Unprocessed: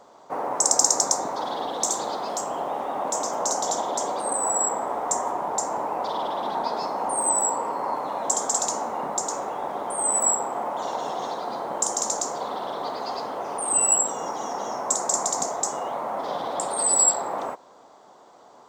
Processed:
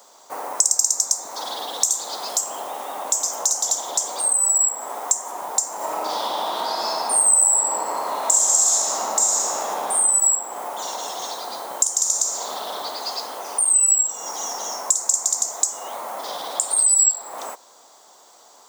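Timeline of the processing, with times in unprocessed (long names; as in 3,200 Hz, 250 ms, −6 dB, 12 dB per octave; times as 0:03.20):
0:05.77–0:09.95: thrown reverb, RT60 2.7 s, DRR −11 dB
0:11.95–0:12.75: thrown reverb, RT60 1.7 s, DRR 2 dB
whole clip: RIAA equalisation recording; downward compressor 3 to 1, threshold −24 dBFS; high-shelf EQ 3,400 Hz +7.5 dB; level −1.5 dB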